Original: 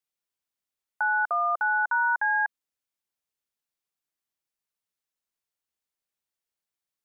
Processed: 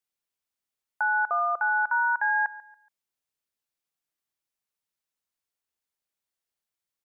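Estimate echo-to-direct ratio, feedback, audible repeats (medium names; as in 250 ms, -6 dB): -18.0 dB, 32%, 2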